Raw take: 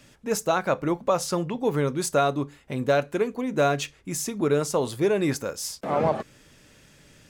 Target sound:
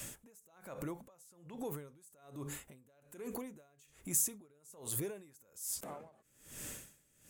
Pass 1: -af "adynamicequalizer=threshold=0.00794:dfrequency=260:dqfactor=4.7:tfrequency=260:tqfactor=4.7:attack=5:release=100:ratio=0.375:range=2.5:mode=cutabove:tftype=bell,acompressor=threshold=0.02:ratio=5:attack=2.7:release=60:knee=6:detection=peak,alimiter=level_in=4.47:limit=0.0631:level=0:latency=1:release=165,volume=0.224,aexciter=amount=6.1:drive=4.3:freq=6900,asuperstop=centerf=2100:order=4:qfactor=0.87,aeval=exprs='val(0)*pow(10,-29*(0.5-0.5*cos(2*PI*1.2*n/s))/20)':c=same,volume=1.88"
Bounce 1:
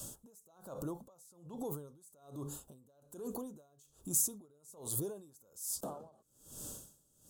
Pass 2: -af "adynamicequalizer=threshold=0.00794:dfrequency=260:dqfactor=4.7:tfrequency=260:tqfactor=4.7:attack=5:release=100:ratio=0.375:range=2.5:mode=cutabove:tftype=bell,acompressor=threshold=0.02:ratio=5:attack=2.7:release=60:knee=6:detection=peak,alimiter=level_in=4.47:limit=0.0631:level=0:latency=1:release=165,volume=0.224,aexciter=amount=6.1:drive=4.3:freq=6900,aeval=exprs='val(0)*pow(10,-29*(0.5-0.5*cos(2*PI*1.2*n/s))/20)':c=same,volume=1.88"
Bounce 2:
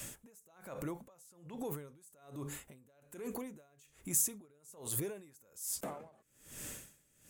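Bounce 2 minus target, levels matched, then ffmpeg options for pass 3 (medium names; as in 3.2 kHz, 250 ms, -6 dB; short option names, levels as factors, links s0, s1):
compression: peak gain reduction -8.5 dB
-af "adynamicequalizer=threshold=0.00794:dfrequency=260:dqfactor=4.7:tfrequency=260:tqfactor=4.7:attack=5:release=100:ratio=0.375:range=2.5:mode=cutabove:tftype=bell,acompressor=threshold=0.00596:ratio=5:attack=2.7:release=60:knee=6:detection=peak,alimiter=level_in=4.47:limit=0.0631:level=0:latency=1:release=165,volume=0.224,aexciter=amount=6.1:drive=4.3:freq=6900,aeval=exprs='val(0)*pow(10,-29*(0.5-0.5*cos(2*PI*1.2*n/s))/20)':c=same,volume=1.88"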